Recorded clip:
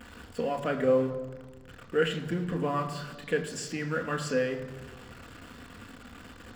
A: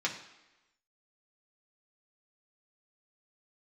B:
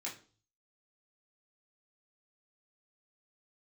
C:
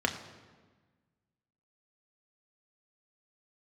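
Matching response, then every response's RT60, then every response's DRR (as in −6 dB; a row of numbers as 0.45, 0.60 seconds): C; 1.0, 0.40, 1.4 seconds; −2.5, −6.0, 3.0 decibels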